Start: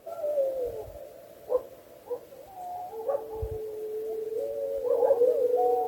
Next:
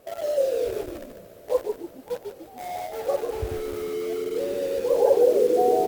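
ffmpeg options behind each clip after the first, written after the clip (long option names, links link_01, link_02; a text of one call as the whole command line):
ffmpeg -i in.wav -filter_complex "[0:a]asplit=2[link_01][link_02];[link_02]acrusher=bits=5:mix=0:aa=0.000001,volume=-5.5dB[link_03];[link_01][link_03]amix=inputs=2:normalize=0,asplit=6[link_04][link_05][link_06][link_07][link_08][link_09];[link_05]adelay=146,afreqshift=-80,volume=-6dB[link_10];[link_06]adelay=292,afreqshift=-160,volume=-14.2dB[link_11];[link_07]adelay=438,afreqshift=-240,volume=-22.4dB[link_12];[link_08]adelay=584,afreqshift=-320,volume=-30.5dB[link_13];[link_09]adelay=730,afreqshift=-400,volume=-38.7dB[link_14];[link_04][link_10][link_11][link_12][link_13][link_14]amix=inputs=6:normalize=0" out.wav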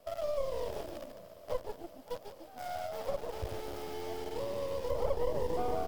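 ffmpeg -i in.wav -filter_complex "[0:a]aeval=exprs='if(lt(val(0),0),0.251*val(0),val(0))':channel_layout=same,equalizer=frequency=400:width_type=o:width=0.33:gain=-7,equalizer=frequency=630:width_type=o:width=0.33:gain=9,equalizer=frequency=3150:width_type=o:width=0.33:gain=5,equalizer=frequency=5000:width_type=o:width=0.33:gain=7,acrossover=split=280[link_01][link_02];[link_02]acompressor=threshold=-30dB:ratio=2.5[link_03];[link_01][link_03]amix=inputs=2:normalize=0,volume=-5.5dB" out.wav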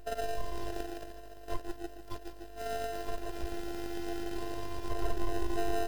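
ffmpeg -i in.wav -filter_complex "[0:a]aeval=exprs='val(0)+0.00282*(sin(2*PI*50*n/s)+sin(2*PI*2*50*n/s)/2+sin(2*PI*3*50*n/s)/3+sin(2*PI*4*50*n/s)/4+sin(2*PI*5*50*n/s)/5)':channel_layout=same,afftfilt=real='hypot(re,im)*cos(PI*b)':imag='0':win_size=512:overlap=0.75,asplit=2[link_01][link_02];[link_02]acrusher=samples=39:mix=1:aa=0.000001,volume=-3.5dB[link_03];[link_01][link_03]amix=inputs=2:normalize=0,volume=2.5dB" out.wav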